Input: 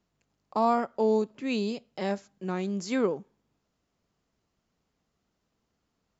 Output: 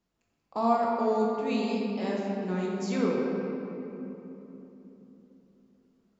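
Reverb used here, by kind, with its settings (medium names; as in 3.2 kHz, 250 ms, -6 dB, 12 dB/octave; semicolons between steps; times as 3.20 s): simulated room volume 190 m³, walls hard, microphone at 0.7 m; trim -5 dB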